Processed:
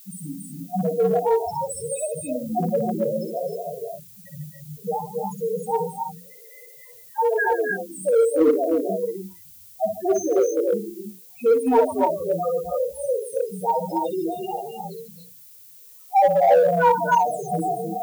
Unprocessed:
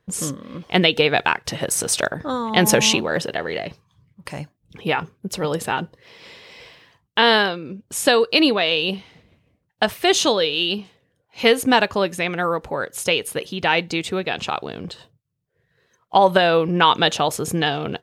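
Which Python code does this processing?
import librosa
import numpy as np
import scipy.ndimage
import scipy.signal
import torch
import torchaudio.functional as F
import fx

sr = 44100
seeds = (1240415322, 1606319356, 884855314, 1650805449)

p1 = fx.peak_eq(x, sr, hz=3400.0, db=-10.5, octaves=1.1)
p2 = fx.spec_topn(p1, sr, count=1)
p3 = fx.hum_notches(p2, sr, base_hz=60, count=7)
p4 = fx.echo_multitap(p3, sr, ms=(59, 146, 258, 279, 281, 312), db=(-6.5, -14.5, -13.0, -5.5, -10.5, -5.0))
p5 = fx.dmg_noise_colour(p4, sr, seeds[0], colour='violet', level_db=-56.0)
p6 = np.clip(p5, -10.0 ** (-21.0 / 20.0), 10.0 ** (-21.0 / 20.0))
p7 = p5 + (p6 * librosa.db_to_amplitude(-5.5))
p8 = fx.low_shelf(p7, sr, hz=400.0, db=-8.0)
y = p8 * librosa.db_to_amplitude(5.0)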